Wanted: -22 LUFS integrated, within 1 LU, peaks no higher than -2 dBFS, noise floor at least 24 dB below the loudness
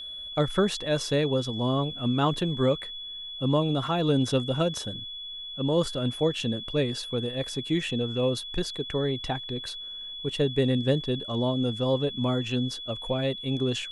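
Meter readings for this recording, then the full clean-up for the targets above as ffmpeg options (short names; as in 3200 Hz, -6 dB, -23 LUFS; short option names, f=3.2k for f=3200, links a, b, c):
steady tone 3400 Hz; tone level -36 dBFS; loudness -27.5 LUFS; peak -12.5 dBFS; loudness target -22.0 LUFS
-> -af "bandreject=f=3.4k:w=30"
-af "volume=5.5dB"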